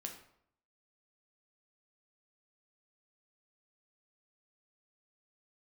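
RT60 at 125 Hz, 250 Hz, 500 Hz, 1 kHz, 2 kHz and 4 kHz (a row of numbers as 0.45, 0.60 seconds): 0.80, 0.70, 0.70, 0.70, 0.55, 0.45 seconds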